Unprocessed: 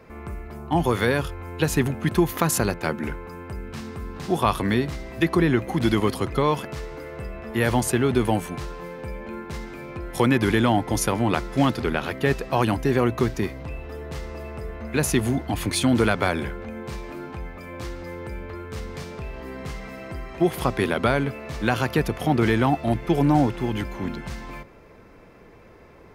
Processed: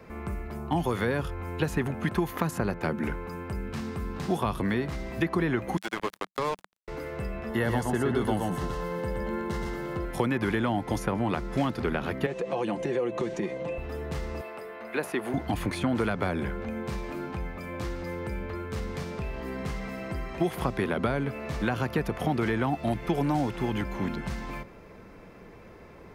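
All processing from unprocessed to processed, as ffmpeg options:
-filter_complex "[0:a]asettb=1/sr,asplit=3[a][b][c];[a]atrim=end=5.774[d];[b]atrim=start=5.77:end=6.88,asetpts=PTS-STARTPTS,afade=t=in:d=0.004:c=qsin,afade=t=out:st=1.106:d=0.004:c=qsin,highpass=640,acrusher=bits=3:mix=0:aa=0.5[e];[c]atrim=start=6.876[f];[d][e]acrossfade=d=0.004:c1=hsin:c2=qsin[g];[g][f]acrossfade=d=0.004:c1=qsin:c2=hsin,asettb=1/sr,asplit=3[h][i][j];[h]atrim=end=7.494[k];[i]atrim=start=7.49:end=10.05,asetpts=PTS-STARTPTS,afade=t=in:d=0.004:c=qsin,afade=t=out:st=2.556:d=0.004:c=qsin,asuperstop=centerf=2400:order=8:qfactor=7.3,aecho=1:1:121:0.631,atrim=end_sample=112896[l];[j]atrim=start=10.046[m];[k][l]acrossfade=d=0.004:c1=hsin:c2=qsin[n];[n][m]acrossfade=d=0.004:c1=qsin:c2=hsin,asettb=1/sr,asplit=3[o][p][q];[o]atrim=end=12.264[r];[p]atrim=start=12.26:end=13.78,asetpts=PTS-STARTPTS,afade=t=in:d=0.004:c=qsin,afade=t=out:st=1.516:d=0.004:c=qsin,highpass=190,equalizer=f=510:t=q:w=4:g=9,equalizer=f=1.4k:t=q:w=4:g=-6,equalizer=f=4.9k:t=q:w=4:g=-8,lowpass=f=8.5k:w=0.5412,lowpass=f=8.5k:w=1.3066,aecho=1:1:5.8:0.55,atrim=end_sample=67032,acompressor=threshold=-28dB:ratio=2.5:attack=3.2:release=140:knee=1:detection=peak[s];[q]atrim=start=13.776[t];[r][s]acrossfade=d=0.004:c1=hsin:c2=qsin[u];[u][t]acrossfade=d=0.004:c1=qsin:c2=hsin,asettb=1/sr,asplit=3[v][w][x];[v]atrim=end=14.414[y];[w]atrim=start=14.41:end=15.34,asetpts=PTS-STARTPTS,afade=t=in:d=0.004:c=qsin,afade=t=out:st=0.926:d=0.004:c=qsin,highpass=460,equalizer=f=6.5k:t=o:w=0.58:g=-8.5[z];[x]atrim=start=15.336[aa];[y][z]acrossfade=d=0.004:c1=hsin:c2=qsin[ab];[ab][aa]acrossfade=d=0.004:c1=qsin:c2=hsin,equalizer=f=190:w=4.7:g=4.5,acrossover=split=480|2200[ac][ad][ae];[ac]acompressor=threshold=-27dB:ratio=4[af];[ad]acompressor=threshold=-30dB:ratio=4[ag];[ae]acompressor=threshold=-46dB:ratio=4[ah];[af][ag][ah]amix=inputs=3:normalize=0"

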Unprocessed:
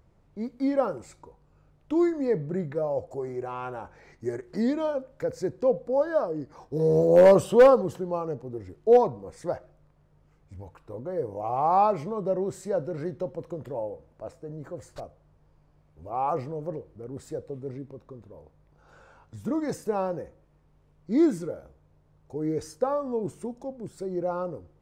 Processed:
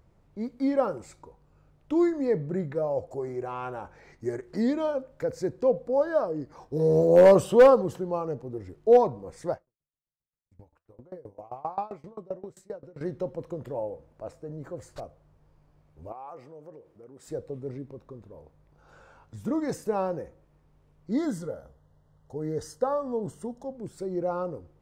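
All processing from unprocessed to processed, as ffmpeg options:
-filter_complex "[0:a]asettb=1/sr,asplit=3[a][b][c];[a]atrim=end=9.544[d];[b]atrim=start=9.54:end=13.01,asetpts=PTS-STARTPTS,afade=t=in:d=0.004:c=qsin,afade=t=out:st=3.466:d=0.004:c=qsin,agate=range=-26dB:threshold=-52dB:ratio=16:release=100:detection=peak,flanger=delay=5:depth=8.9:regen=81:speed=1.3:shape=sinusoidal,aeval=exprs='val(0)*pow(10,-25*if(lt(mod(7.6*n/s,1),2*abs(7.6)/1000),1-mod(7.6*n/s,1)/(2*abs(7.6)/1000),(mod(7.6*n/s,1)-2*abs(7.6)/1000)/(1-2*abs(7.6)/1000))/20)':c=same[e];[c]atrim=start=13.006[f];[d][e]acrossfade=d=0.004:c1=hsin:c2=qsin[g];[g][f]acrossfade=d=0.004:c1=qsin:c2=hsin,asettb=1/sr,asplit=3[h][i][j];[h]atrim=end=16.124[k];[i]atrim=start=16.12:end=17.28,asetpts=PTS-STARTPTS,afade=t=in:d=0.004:c=qsin,afade=t=out:st=1.156:d=0.004:c=qsin,bandreject=f=4.2k:w=17,acompressor=threshold=-45dB:ratio=2.5:attack=3.2:release=140:knee=1:detection=peak,highpass=f=360:p=1[l];[j]atrim=start=17.276[m];[k][l]acrossfade=d=0.004:c1=hsin:c2=qsin[n];[n][m]acrossfade=d=0.004:c1=qsin:c2=hsin,asettb=1/sr,asplit=3[o][p][q];[o]atrim=end=21.114[r];[p]atrim=start=21.11:end=23.75,asetpts=PTS-STARTPTS,afade=t=in:d=0.004:c=qsin,afade=t=out:st=2.636:d=0.004:c=qsin,asuperstop=centerf=2400:order=12:qfactor=3.5,equalizer=f=340:t=o:w=0.22:g=-13[s];[q]atrim=start=23.746[t];[r][s]acrossfade=d=0.004:c1=hsin:c2=qsin[u];[u][t]acrossfade=d=0.004:c1=qsin:c2=hsin"

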